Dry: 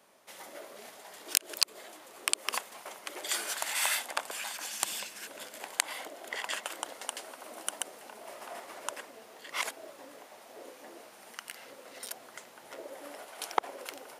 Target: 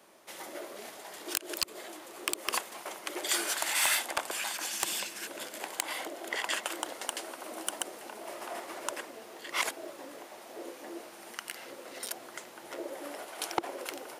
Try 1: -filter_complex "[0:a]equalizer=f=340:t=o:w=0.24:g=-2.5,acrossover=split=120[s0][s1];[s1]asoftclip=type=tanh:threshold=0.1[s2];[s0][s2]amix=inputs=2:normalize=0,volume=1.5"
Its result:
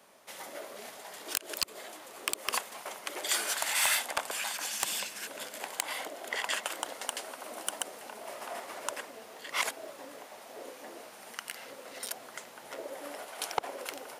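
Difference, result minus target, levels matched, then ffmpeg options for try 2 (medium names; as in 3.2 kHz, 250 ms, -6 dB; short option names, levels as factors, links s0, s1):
250 Hz band -6.5 dB
-filter_complex "[0:a]equalizer=f=340:t=o:w=0.24:g=9,acrossover=split=120[s0][s1];[s1]asoftclip=type=tanh:threshold=0.1[s2];[s0][s2]amix=inputs=2:normalize=0,volume=1.5"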